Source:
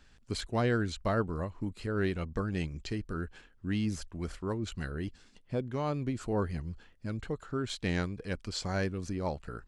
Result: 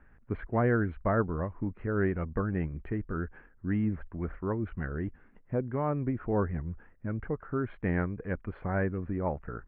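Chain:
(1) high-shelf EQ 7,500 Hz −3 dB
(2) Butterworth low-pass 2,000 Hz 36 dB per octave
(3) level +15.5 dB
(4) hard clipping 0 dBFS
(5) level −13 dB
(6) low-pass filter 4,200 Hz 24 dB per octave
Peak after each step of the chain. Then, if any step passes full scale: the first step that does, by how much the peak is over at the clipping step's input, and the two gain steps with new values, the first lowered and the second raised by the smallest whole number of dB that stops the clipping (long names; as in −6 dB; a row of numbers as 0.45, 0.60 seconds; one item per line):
−17.5, −18.5, −3.0, −3.0, −16.0, −16.0 dBFS
no step passes full scale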